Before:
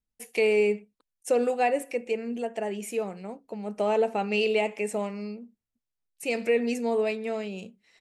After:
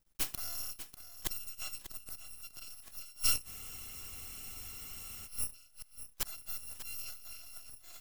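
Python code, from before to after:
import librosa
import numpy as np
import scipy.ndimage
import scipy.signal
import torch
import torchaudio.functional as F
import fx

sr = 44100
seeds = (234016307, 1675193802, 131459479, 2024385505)

p1 = fx.bit_reversed(x, sr, seeds[0], block=256)
p2 = fx.gate_flip(p1, sr, shuts_db=-28.0, range_db=-28)
p3 = np.maximum(p2, 0.0)
p4 = p3 + fx.echo_single(p3, sr, ms=593, db=-12.0, dry=0)
p5 = fx.spec_freeze(p4, sr, seeds[1], at_s=3.48, hold_s=1.78)
y = F.gain(torch.from_numpy(p5), 13.5).numpy()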